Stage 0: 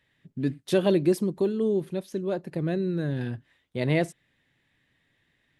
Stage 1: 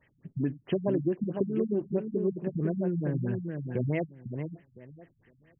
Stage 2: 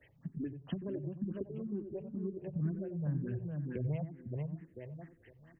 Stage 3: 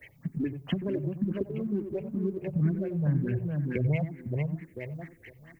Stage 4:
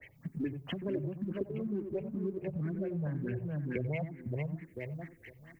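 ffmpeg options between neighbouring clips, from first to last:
-filter_complex "[0:a]acompressor=threshold=-33dB:ratio=4,asplit=2[a][b];[b]adelay=505,lowpass=f=2.4k:p=1,volume=-5.5dB,asplit=2[c][d];[d]adelay=505,lowpass=f=2.4k:p=1,volume=0.19,asplit=2[e][f];[f]adelay=505,lowpass=f=2.4k:p=1,volume=0.19[g];[a][c][e][g]amix=inputs=4:normalize=0,afftfilt=real='re*lt(b*sr/1024,200*pow(3300/200,0.5+0.5*sin(2*PI*4.6*pts/sr)))':imag='im*lt(b*sr/1024,200*pow(3300/200,0.5+0.5*sin(2*PI*4.6*pts/sr)))':win_size=1024:overlap=0.75,volume=6dB"
-filter_complex "[0:a]asplit=2[a][b];[b]adelay=90,lowpass=f=1k:p=1,volume=-10.5dB,asplit=2[c][d];[d]adelay=90,lowpass=f=1k:p=1,volume=0.21,asplit=2[e][f];[f]adelay=90,lowpass=f=1k:p=1,volume=0.21[g];[a][c][e][g]amix=inputs=4:normalize=0,acrossover=split=120[h][i];[i]acompressor=threshold=-44dB:ratio=4[j];[h][j]amix=inputs=2:normalize=0,asplit=2[k][l];[l]afreqshift=2.1[m];[k][m]amix=inputs=2:normalize=1,volume=5dB"
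-filter_complex "[0:a]equalizer=f=2.2k:t=o:w=0.33:g=12,crystalizer=i=2:c=0,asplit=2[a][b];[b]aeval=exprs='sgn(val(0))*max(abs(val(0))-0.00211,0)':c=same,volume=-11.5dB[c];[a][c]amix=inputs=2:normalize=0,volume=6.5dB"
-filter_complex "[0:a]acrossover=split=340[a][b];[a]alimiter=level_in=4.5dB:limit=-24dB:level=0:latency=1:release=190,volume=-4.5dB[c];[c][b]amix=inputs=2:normalize=0,adynamicequalizer=threshold=0.00178:dfrequency=3000:dqfactor=0.7:tfrequency=3000:tqfactor=0.7:attack=5:release=100:ratio=0.375:range=2.5:mode=cutabove:tftype=highshelf,volume=-2.5dB"

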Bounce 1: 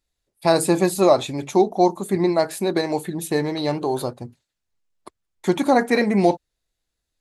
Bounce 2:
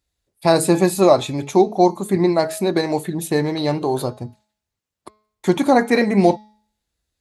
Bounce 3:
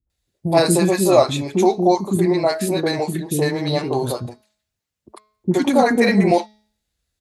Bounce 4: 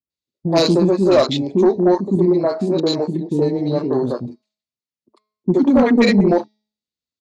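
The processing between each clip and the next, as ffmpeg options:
-af "highpass=55,lowshelf=f=100:g=8.5,bandreject=f=213:t=h:w=4,bandreject=f=426:t=h:w=4,bandreject=f=639:t=h:w=4,bandreject=f=852:t=h:w=4,bandreject=f=1.065k:t=h:w=4,bandreject=f=1.278k:t=h:w=4,bandreject=f=1.491k:t=h:w=4,bandreject=f=1.704k:t=h:w=4,bandreject=f=1.917k:t=h:w=4,bandreject=f=2.13k:t=h:w=4,bandreject=f=2.343k:t=h:w=4,bandreject=f=2.556k:t=h:w=4,bandreject=f=2.769k:t=h:w=4,bandreject=f=2.982k:t=h:w=4,bandreject=f=3.195k:t=h:w=4,bandreject=f=3.408k:t=h:w=4,bandreject=f=3.621k:t=h:w=4,bandreject=f=3.834k:t=h:w=4,bandreject=f=4.047k:t=h:w=4,bandreject=f=4.26k:t=h:w=4,bandreject=f=4.473k:t=h:w=4,bandreject=f=4.686k:t=h:w=4,bandreject=f=4.899k:t=h:w=4,bandreject=f=5.112k:t=h:w=4,bandreject=f=5.325k:t=h:w=4,bandreject=f=5.538k:t=h:w=4,bandreject=f=5.751k:t=h:w=4,bandreject=f=5.964k:t=h:w=4,bandreject=f=6.177k:t=h:w=4,bandreject=f=6.39k:t=h:w=4,bandreject=f=6.603k:t=h:w=4,volume=2dB"
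-filter_complex "[0:a]acrossover=split=330|990[a][b][c];[b]adelay=70[d];[c]adelay=100[e];[a][d][e]amix=inputs=3:normalize=0,volume=2dB"
-af "highpass=160,equalizer=f=250:t=q:w=4:g=5,equalizer=f=770:t=q:w=4:g=-10,equalizer=f=1.6k:t=q:w=4:g=-10,equalizer=f=4.5k:t=q:w=4:g=4,lowpass=f=7.1k:w=0.5412,lowpass=f=7.1k:w=1.3066,afwtdn=0.0355,aeval=exprs='0.708*(cos(1*acos(clip(val(0)/0.708,-1,1)))-cos(1*PI/2))+0.112*(cos(5*acos(clip(val(0)/0.708,-1,1)))-cos(5*PI/2))+0.0316*(cos(7*acos(clip(val(0)/0.708,-1,1)))-cos(7*PI/2))':c=same"

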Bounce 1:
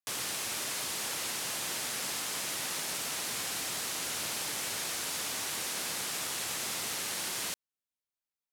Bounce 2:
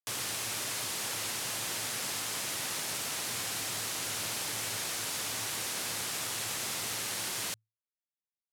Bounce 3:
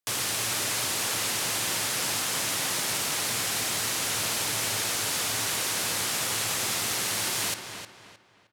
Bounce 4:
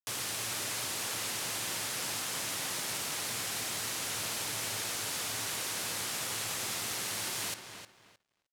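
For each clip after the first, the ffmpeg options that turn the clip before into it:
-af "afftfilt=real='re*gte(hypot(re,im),0.000251)':imag='im*gte(hypot(re,im),0.000251)':win_size=1024:overlap=0.75,equalizer=f=110:w=6.6:g=12.5"
-filter_complex "[0:a]asplit=2[a][b];[b]adelay=310,lowpass=f=3.8k:p=1,volume=-7dB,asplit=2[c][d];[d]adelay=310,lowpass=f=3.8k:p=1,volume=0.35,asplit=2[e][f];[f]adelay=310,lowpass=f=3.8k:p=1,volume=0.35,asplit=2[g][h];[h]adelay=310,lowpass=f=3.8k:p=1,volume=0.35[i];[a][c][e][g][i]amix=inputs=5:normalize=0,volume=6.5dB"
-af "aeval=exprs='sgn(val(0))*max(abs(val(0))-0.00141,0)':c=same,volume=-7dB"

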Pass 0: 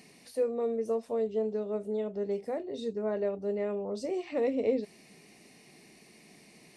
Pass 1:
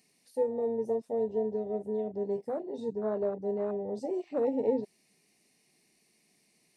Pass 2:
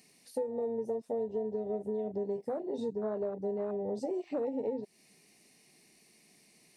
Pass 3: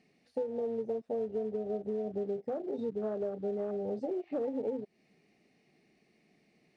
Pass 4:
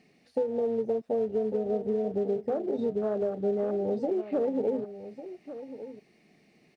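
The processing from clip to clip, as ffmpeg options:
-af "afwtdn=0.02,highshelf=f=4.2k:g=10.5"
-af "acompressor=threshold=-38dB:ratio=6,volume=6dB"
-af "bandreject=f=980:w=5.2,acrusher=bits=6:mode=log:mix=0:aa=0.000001,adynamicsmooth=sensitivity=2:basefreq=2.5k"
-af "aecho=1:1:1149:0.224,volume=6dB"

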